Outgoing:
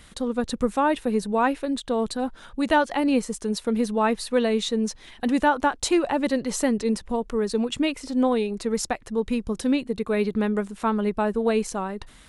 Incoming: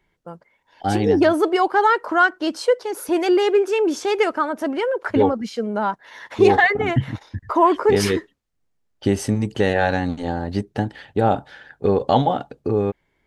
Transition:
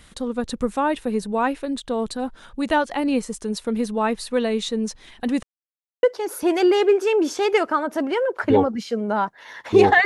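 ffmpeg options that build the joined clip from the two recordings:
-filter_complex "[0:a]apad=whole_dur=10.05,atrim=end=10.05,asplit=2[a][b];[a]atrim=end=5.43,asetpts=PTS-STARTPTS,afade=t=out:st=5.426:d=0.004:c=hsin[c];[b]atrim=start=5.43:end=6.03,asetpts=PTS-STARTPTS,volume=0[d];[1:a]atrim=start=2.69:end=6.71,asetpts=PTS-STARTPTS,afade=t=in:d=0.004:c=hsin[e];[c][d][e]concat=n=3:v=0:a=1"

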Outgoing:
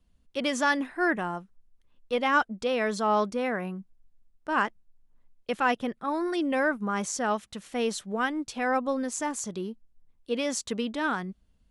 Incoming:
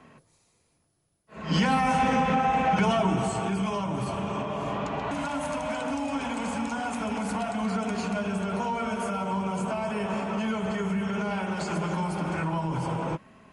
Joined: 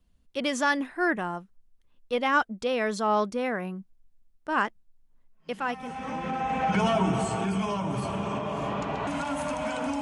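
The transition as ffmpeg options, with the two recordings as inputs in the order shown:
-filter_complex "[0:a]apad=whole_dur=10.01,atrim=end=10.01,atrim=end=6.89,asetpts=PTS-STARTPTS[a];[1:a]atrim=start=1.25:end=6.05,asetpts=PTS-STARTPTS[b];[a][b]acrossfade=d=1.68:c1=qua:c2=qua"

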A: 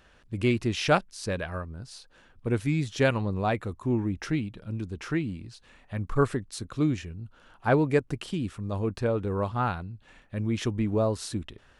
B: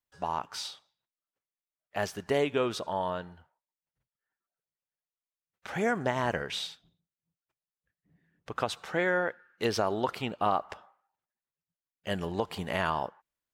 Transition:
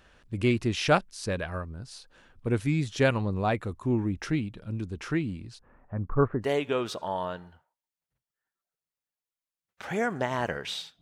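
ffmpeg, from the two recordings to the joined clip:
-filter_complex "[0:a]asettb=1/sr,asplit=3[a][b][c];[a]atrim=end=5.594[d];[b]atrim=start=5.59:end=6.48,asetpts=PTS-STARTPTS,afade=t=in:d=0.004:c=qsin,afade=t=out:st=0.886:d=0.004:c=qsin,lowpass=f=1.4k:w=0.5412,lowpass=f=1.4k:w=1.3066[e];[c]atrim=start=6.476[f];[d][e]acrossfade=d=0.004:c1=hsin:c2=qsin[g];[g][f]acrossfade=d=0.004:c1=qsin:c2=hsin,apad=whole_dur=11.01,atrim=end=11.01,atrim=end=6.48,asetpts=PTS-STARTPTS[h];[1:a]atrim=start=2.25:end=6.86,asetpts=PTS-STARTPTS[i];[h][i]acrossfade=d=0.08:c1=tri:c2=tri"

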